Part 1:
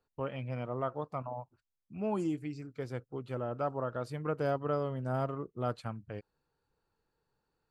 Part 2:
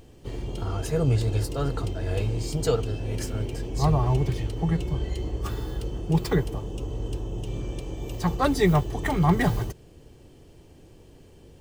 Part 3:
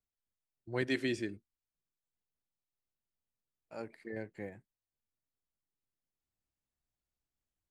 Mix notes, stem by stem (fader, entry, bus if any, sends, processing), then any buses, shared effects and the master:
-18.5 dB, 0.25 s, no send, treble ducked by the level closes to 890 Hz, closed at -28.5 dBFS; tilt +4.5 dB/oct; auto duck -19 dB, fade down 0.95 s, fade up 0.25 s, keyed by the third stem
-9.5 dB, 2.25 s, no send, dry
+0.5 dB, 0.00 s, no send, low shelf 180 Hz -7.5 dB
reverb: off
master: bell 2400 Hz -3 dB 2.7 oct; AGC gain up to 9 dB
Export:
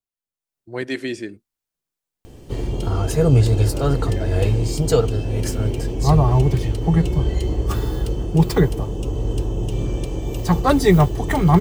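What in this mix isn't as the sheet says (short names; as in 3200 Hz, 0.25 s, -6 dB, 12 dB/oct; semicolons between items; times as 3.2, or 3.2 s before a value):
stem 1: muted; stem 2 -9.5 dB -> 0.0 dB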